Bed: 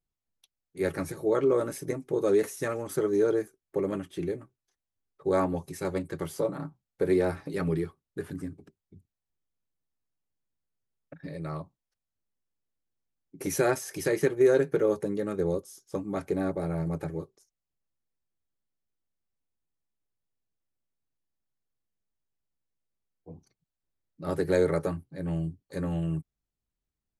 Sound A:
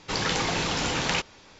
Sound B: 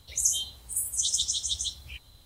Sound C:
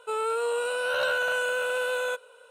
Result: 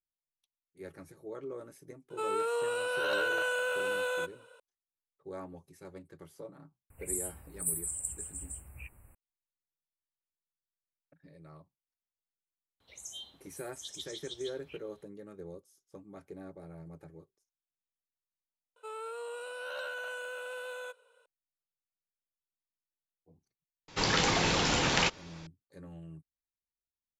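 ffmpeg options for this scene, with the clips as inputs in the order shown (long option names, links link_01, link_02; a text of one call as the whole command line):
ffmpeg -i bed.wav -i cue0.wav -i cue1.wav -i cue2.wav -filter_complex "[3:a]asplit=2[link_01][link_02];[2:a]asplit=2[link_03][link_04];[0:a]volume=-17.5dB[link_05];[link_03]asuperstop=centerf=4600:order=20:qfactor=0.92[link_06];[link_04]acrossover=split=190 3100:gain=0.141 1 0.158[link_07][link_08][link_09];[link_07][link_08][link_09]amix=inputs=3:normalize=0[link_10];[link_02]highpass=290[link_11];[link_05]asplit=2[link_12][link_13];[link_12]atrim=end=18.764[link_14];[link_11]atrim=end=2.5,asetpts=PTS-STARTPTS,volume=-13dB[link_15];[link_13]atrim=start=21.256[link_16];[link_01]atrim=end=2.5,asetpts=PTS-STARTPTS,volume=-4.5dB,afade=type=in:duration=0.004:curve=hsin,afade=type=out:start_time=2.496:duration=0.004:curve=hsin,adelay=2100[link_17];[link_06]atrim=end=2.25,asetpts=PTS-STARTPTS,volume=-2.5dB,afade=type=in:duration=0.004:curve=hsin,afade=type=out:start_time=2.246:duration=0.004:curve=hsin,adelay=304290S[link_18];[link_10]atrim=end=2.25,asetpts=PTS-STARTPTS,volume=-6.5dB,afade=type=in:duration=0.004:curve=hsin,afade=type=out:start_time=2.246:duration=0.004:curve=hsin,adelay=12800[link_19];[1:a]atrim=end=1.59,asetpts=PTS-STARTPTS,volume=-1dB,afade=type=in:duration=0.004:curve=hsin,afade=type=out:start_time=1.586:duration=0.004:curve=hsin,adelay=23880[link_20];[link_14][link_15]acrossfade=duration=0.004:curve1=hsin:curve2=hsin[link_21];[link_21][link_16]acrossfade=duration=0.004:curve1=hsin:curve2=hsin[link_22];[link_22][link_17][link_18][link_19][link_20]amix=inputs=5:normalize=0" out.wav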